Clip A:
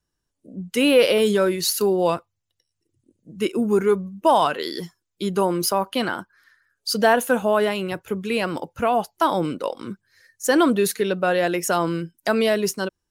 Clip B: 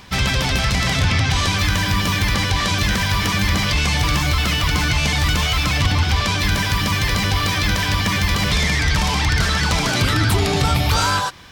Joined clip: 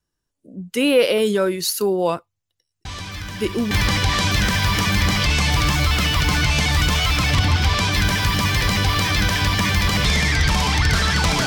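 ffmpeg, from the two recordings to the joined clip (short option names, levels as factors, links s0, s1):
-filter_complex "[1:a]asplit=2[s0][s1];[0:a]apad=whole_dur=11.46,atrim=end=11.46,atrim=end=3.712[s2];[s1]atrim=start=2.178:end=9.93[s3];[s0]atrim=start=1.32:end=2.18,asetpts=PTS-STARTPTS,volume=0.224,afade=t=in:d=0.004:c=hsin,afade=t=out:st=0.856:d=0.004:c=hsin,adelay=2850[s4];[s2][s3]acrossfade=d=0.004:c1=hsin:c2=hsin[s5];[s5][s4]amix=inputs=2:normalize=0"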